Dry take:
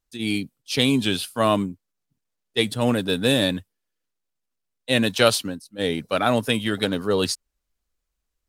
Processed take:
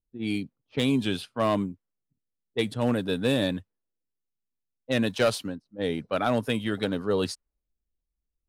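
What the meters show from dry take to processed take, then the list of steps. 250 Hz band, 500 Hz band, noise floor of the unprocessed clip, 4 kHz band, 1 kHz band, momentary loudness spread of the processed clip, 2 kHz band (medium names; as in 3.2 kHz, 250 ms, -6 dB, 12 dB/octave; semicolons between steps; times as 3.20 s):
-3.5 dB, -4.0 dB, -80 dBFS, -9.5 dB, -5.5 dB, 9 LU, -7.0 dB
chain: treble shelf 2.5 kHz -8 dB; level-controlled noise filter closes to 360 Hz, open at -21 dBFS; hard clipper -11.5 dBFS, distortion -20 dB; trim -3.5 dB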